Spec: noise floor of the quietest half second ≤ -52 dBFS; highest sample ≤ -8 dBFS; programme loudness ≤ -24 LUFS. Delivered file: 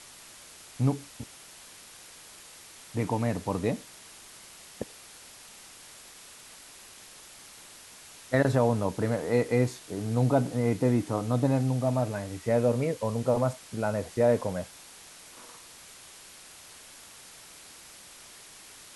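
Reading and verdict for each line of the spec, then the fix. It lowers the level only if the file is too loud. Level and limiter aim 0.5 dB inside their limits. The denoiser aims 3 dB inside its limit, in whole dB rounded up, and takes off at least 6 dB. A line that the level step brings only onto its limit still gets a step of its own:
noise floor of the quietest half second -50 dBFS: fail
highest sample -11.0 dBFS: pass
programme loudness -28.0 LUFS: pass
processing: noise reduction 6 dB, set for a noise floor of -50 dBFS

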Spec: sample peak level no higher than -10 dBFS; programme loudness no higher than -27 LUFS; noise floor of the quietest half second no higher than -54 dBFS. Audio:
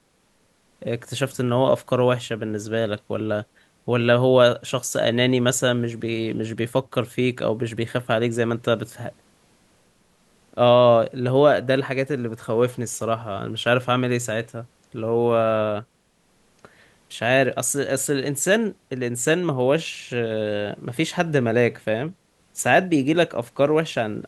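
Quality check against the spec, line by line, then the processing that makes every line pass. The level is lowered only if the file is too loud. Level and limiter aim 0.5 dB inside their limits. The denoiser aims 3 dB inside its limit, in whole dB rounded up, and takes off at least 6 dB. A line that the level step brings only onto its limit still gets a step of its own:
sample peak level -3.5 dBFS: fail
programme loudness -22.0 LUFS: fail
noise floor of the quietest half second -63 dBFS: pass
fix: trim -5.5 dB; peak limiter -10.5 dBFS

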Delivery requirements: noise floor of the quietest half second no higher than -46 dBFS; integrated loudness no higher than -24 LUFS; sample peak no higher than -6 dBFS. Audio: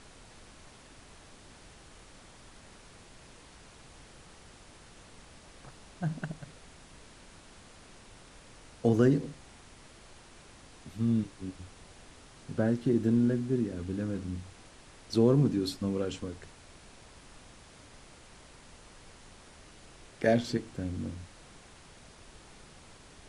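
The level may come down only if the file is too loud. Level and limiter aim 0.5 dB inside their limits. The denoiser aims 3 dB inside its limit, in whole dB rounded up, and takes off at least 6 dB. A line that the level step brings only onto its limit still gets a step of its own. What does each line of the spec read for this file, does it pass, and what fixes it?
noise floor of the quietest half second -54 dBFS: pass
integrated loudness -30.5 LUFS: pass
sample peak -13.0 dBFS: pass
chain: none needed

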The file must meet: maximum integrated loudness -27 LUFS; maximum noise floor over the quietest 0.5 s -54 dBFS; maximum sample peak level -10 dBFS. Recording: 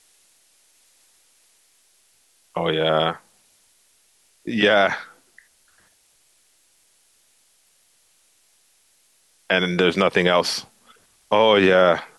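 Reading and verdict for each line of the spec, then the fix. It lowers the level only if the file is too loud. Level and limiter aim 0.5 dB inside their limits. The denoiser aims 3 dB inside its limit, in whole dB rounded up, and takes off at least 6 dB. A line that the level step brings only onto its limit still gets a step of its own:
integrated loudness -19.0 LUFS: fail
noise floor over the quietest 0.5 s -61 dBFS: pass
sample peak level -5.5 dBFS: fail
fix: trim -8.5 dB

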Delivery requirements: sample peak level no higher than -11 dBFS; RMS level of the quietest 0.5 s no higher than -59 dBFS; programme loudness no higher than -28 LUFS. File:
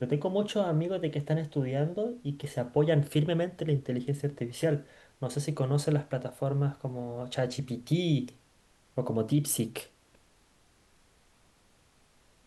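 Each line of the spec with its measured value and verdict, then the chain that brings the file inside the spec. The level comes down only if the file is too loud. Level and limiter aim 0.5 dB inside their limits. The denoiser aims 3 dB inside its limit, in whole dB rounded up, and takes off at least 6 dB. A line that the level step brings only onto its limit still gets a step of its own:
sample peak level -13.0 dBFS: pass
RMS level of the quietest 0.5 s -64 dBFS: pass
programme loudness -31.0 LUFS: pass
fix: none needed

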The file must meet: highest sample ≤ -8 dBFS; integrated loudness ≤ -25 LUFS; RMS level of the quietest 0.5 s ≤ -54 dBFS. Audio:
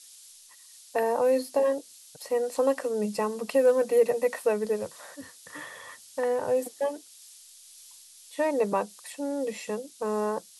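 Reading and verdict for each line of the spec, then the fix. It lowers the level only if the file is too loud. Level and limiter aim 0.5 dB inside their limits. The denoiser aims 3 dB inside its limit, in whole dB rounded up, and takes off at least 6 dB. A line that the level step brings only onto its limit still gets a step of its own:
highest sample -12.0 dBFS: pass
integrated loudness -27.5 LUFS: pass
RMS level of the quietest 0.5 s -52 dBFS: fail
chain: noise reduction 6 dB, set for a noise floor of -52 dBFS

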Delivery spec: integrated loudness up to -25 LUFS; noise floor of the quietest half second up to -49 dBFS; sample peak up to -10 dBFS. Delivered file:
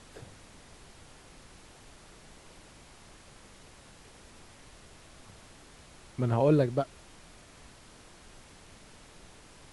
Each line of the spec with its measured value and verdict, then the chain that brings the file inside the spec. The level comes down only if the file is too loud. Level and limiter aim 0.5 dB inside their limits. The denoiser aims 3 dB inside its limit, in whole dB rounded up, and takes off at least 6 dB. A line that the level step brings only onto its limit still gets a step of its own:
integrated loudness -28.0 LUFS: pass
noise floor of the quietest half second -54 dBFS: pass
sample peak -12.0 dBFS: pass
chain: none needed

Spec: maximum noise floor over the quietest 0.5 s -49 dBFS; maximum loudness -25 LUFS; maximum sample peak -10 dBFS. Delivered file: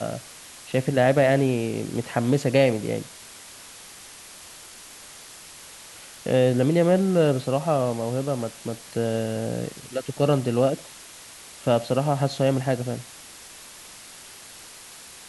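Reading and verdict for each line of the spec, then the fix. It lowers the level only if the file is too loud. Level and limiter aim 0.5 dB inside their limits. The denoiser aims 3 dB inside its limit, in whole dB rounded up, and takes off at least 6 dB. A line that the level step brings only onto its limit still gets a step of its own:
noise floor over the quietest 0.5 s -44 dBFS: fail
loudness -23.5 LUFS: fail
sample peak -6.5 dBFS: fail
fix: noise reduction 6 dB, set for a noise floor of -44 dBFS; trim -2 dB; peak limiter -10.5 dBFS

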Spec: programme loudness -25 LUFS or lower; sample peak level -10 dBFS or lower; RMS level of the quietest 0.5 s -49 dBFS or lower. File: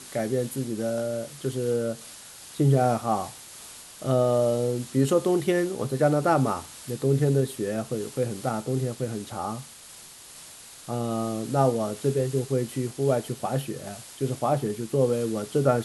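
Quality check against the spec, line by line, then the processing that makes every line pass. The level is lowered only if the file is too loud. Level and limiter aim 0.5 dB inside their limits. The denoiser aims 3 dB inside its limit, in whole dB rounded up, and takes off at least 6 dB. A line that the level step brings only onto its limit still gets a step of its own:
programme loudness -26.5 LUFS: pass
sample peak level -8.0 dBFS: fail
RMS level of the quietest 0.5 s -47 dBFS: fail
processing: noise reduction 6 dB, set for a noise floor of -47 dBFS; peak limiter -10.5 dBFS

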